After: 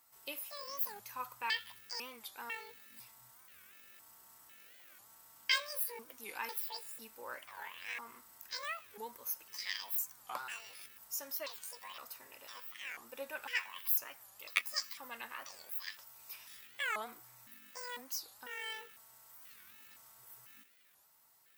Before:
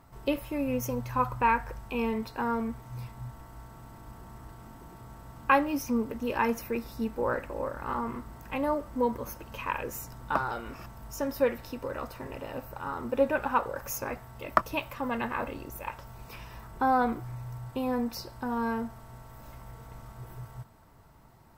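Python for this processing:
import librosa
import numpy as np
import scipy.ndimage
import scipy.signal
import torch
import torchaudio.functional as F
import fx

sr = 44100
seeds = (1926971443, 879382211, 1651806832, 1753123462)

y = fx.pitch_trill(x, sr, semitones=11.5, every_ms=499)
y = np.diff(y, prepend=0.0)
y = fx.record_warp(y, sr, rpm=45.0, depth_cents=250.0)
y = y * 10.0 ** (2.0 / 20.0)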